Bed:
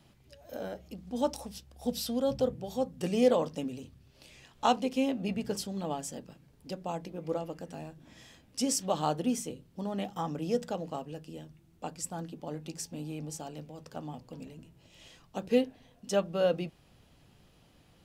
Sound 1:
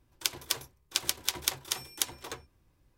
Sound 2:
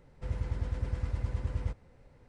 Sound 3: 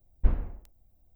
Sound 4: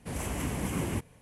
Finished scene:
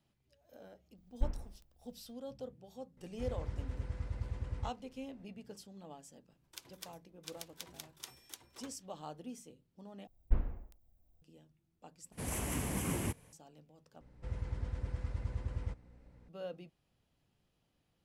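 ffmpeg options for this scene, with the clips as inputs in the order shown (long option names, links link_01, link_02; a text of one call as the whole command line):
ffmpeg -i bed.wav -i cue0.wav -i cue1.wav -i cue2.wav -i cue3.wav -filter_complex "[3:a]asplit=2[link_01][link_02];[2:a]asplit=2[link_03][link_04];[0:a]volume=-16.5dB[link_05];[1:a]alimiter=limit=-12.5dB:level=0:latency=1:release=321[link_06];[4:a]highshelf=frequency=6100:gain=7[link_07];[link_04]aeval=exprs='val(0)+0.002*(sin(2*PI*60*n/s)+sin(2*PI*2*60*n/s)/2+sin(2*PI*3*60*n/s)/3+sin(2*PI*4*60*n/s)/4+sin(2*PI*5*60*n/s)/5)':channel_layout=same[link_08];[link_05]asplit=4[link_09][link_10][link_11][link_12];[link_09]atrim=end=10.074[link_13];[link_02]atrim=end=1.15,asetpts=PTS-STARTPTS,volume=-6.5dB[link_14];[link_10]atrim=start=11.216:end=12.124[link_15];[link_07]atrim=end=1.21,asetpts=PTS-STARTPTS,volume=-4.5dB[link_16];[link_11]atrim=start=13.326:end=14.014[link_17];[link_08]atrim=end=2.28,asetpts=PTS-STARTPTS,volume=-5.5dB[link_18];[link_12]atrim=start=16.286[link_19];[link_01]atrim=end=1.15,asetpts=PTS-STARTPTS,volume=-10.5dB,afade=type=in:duration=0.004:curve=hsin,afade=type=out:start_time=1.146:duration=0.004:curve=hsin,adelay=970[link_20];[link_03]atrim=end=2.28,asetpts=PTS-STARTPTS,volume=-6.5dB,afade=type=in:duration=0.004:curve=hsin,afade=type=out:start_time=2.276:duration=0.004:curve=hsin,adelay=2970[link_21];[link_06]atrim=end=2.97,asetpts=PTS-STARTPTS,volume=-12.5dB,afade=type=in:duration=0.004:curve=hsin,afade=type=out:start_time=2.966:duration=0.004:curve=hsin,adelay=6320[link_22];[link_13][link_14]acrossfade=duration=0.004:curve1=hsin:curve2=hsin[link_23];[link_23][link_15]acrossfade=duration=0.004:curve1=hsin:curve2=hsin[link_24];[link_24][link_16]acrossfade=duration=0.004:curve1=hsin:curve2=hsin[link_25];[link_25][link_17]acrossfade=duration=0.004:curve1=hsin:curve2=hsin[link_26];[link_26][link_18]acrossfade=duration=0.004:curve1=hsin:curve2=hsin[link_27];[link_27][link_19]acrossfade=duration=0.004:curve1=hsin:curve2=hsin[link_28];[link_28][link_20][link_21][link_22]amix=inputs=4:normalize=0" out.wav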